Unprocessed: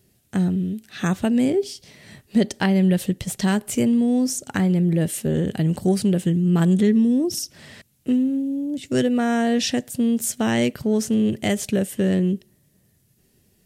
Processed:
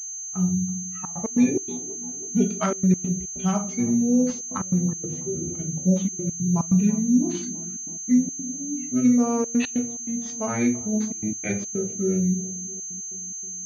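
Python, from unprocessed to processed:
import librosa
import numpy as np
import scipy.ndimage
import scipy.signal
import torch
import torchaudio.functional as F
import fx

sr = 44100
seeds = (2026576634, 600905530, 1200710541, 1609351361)

y = fx.bin_expand(x, sr, power=2.0)
y = fx.formant_shift(y, sr, semitones=-5)
y = fx.echo_bbd(y, sr, ms=327, stages=2048, feedback_pct=68, wet_db=-18.5)
y = fx.room_shoebox(y, sr, seeds[0], volume_m3=220.0, walls='furnished', distance_m=1.5)
y = fx.step_gate(y, sr, bpm=143, pattern='xxxxxxxxxx.x.xx.', floor_db=-24.0, edge_ms=4.5)
y = fx.env_lowpass(y, sr, base_hz=1800.0, full_db=-17.0)
y = fx.low_shelf(y, sr, hz=160.0, db=-8.0)
y = fx.pwm(y, sr, carrier_hz=6300.0)
y = y * librosa.db_to_amplitude(1.0)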